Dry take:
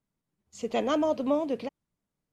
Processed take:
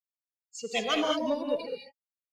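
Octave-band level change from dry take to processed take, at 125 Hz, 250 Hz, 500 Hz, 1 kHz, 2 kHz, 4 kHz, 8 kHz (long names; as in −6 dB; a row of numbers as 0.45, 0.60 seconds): can't be measured, −4.0 dB, −2.0 dB, −0.5 dB, +6.5 dB, +10.0 dB, +6.0 dB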